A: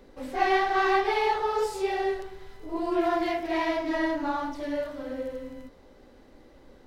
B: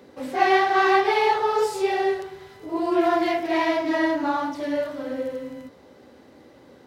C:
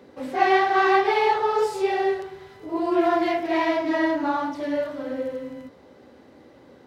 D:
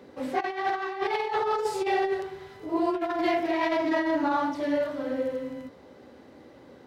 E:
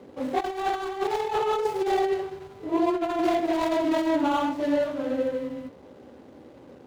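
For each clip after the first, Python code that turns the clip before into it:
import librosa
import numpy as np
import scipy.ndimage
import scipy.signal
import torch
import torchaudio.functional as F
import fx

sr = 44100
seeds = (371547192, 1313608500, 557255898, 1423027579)

y1 = scipy.signal.sosfilt(scipy.signal.butter(4, 88.0, 'highpass', fs=sr, output='sos'), x)
y1 = F.gain(torch.from_numpy(y1), 5.0).numpy()
y2 = fx.high_shelf(y1, sr, hz=4800.0, db=-6.0)
y3 = fx.over_compress(y2, sr, threshold_db=-23.0, ratio=-0.5)
y3 = F.gain(torch.from_numpy(y3), -2.5).numpy()
y4 = scipy.ndimage.median_filter(y3, 25, mode='constant')
y4 = F.gain(torch.from_numpy(y4), 3.0).numpy()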